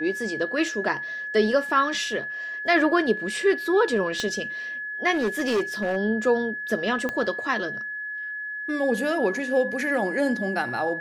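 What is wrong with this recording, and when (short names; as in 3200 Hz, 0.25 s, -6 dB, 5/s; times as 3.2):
tone 1700 Hz -30 dBFS
4.2 pop -14 dBFS
5.13–5.97 clipped -19.5 dBFS
7.09 pop -15 dBFS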